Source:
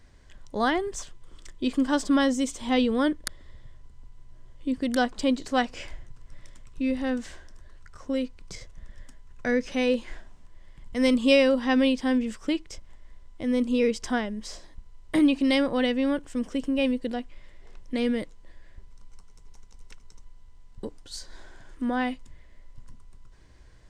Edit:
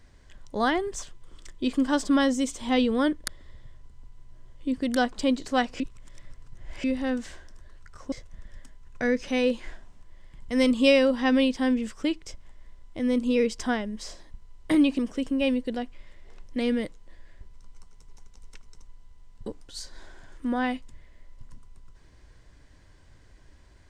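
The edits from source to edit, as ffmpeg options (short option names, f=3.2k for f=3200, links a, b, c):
-filter_complex "[0:a]asplit=5[a][b][c][d][e];[a]atrim=end=5.802[f];[b]atrim=start=5.798:end=6.842,asetpts=PTS-STARTPTS,areverse[g];[c]atrim=start=6.838:end=8.122[h];[d]atrim=start=8.558:end=15.432[i];[e]atrim=start=16.358[j];[f][g]acrossfade=d=0.004:c1=hsin:c2=hsin[k];[k][h]acrossfade=d=0.004:c1=hsin:c2=hsin[l];[l][i]acrossfade=d=0.004:c1=hsin:c2=hsin[m];[m][j]acrossfade=d=0.004:c1=hsin:c2=hsin"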